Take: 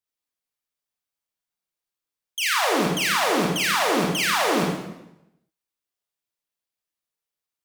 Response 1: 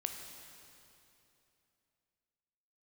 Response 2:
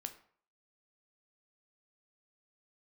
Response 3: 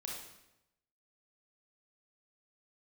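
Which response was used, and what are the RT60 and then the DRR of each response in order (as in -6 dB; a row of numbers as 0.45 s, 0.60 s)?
3; 2.9 s, 0.55 s, 0.90 s; 3.5 dB, 7.0 dB, -2.5 dB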